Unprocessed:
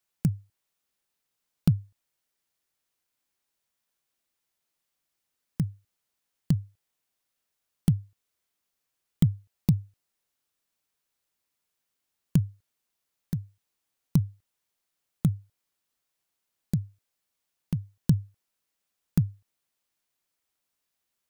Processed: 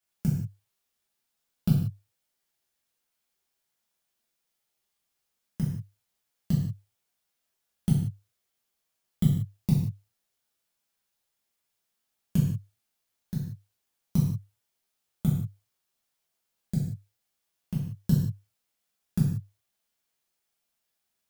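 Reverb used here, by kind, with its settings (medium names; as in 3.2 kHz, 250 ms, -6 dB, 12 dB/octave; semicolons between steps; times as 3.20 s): gated-style reverb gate 210 ms falling, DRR -6.5 dB; trim -6.5 dB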